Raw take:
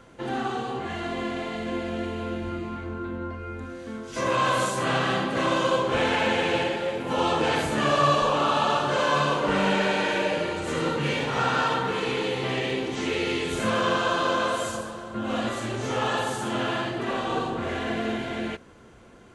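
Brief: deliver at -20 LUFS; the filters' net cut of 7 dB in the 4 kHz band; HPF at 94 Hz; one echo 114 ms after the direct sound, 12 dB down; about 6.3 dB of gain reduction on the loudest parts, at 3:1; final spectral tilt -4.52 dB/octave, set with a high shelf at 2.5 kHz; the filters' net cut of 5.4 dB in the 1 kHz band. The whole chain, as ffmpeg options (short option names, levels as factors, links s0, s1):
-af "highpass=94,equalizer=f=1000:t=o:g=-5.5,highshelf=f=2500:g=-5.5,equalizer=f=4000:t=o:g=-4.5,acompressor=threshold=0.0316:ratio=3,aecho=1:1:114:0.251,volume=4.47"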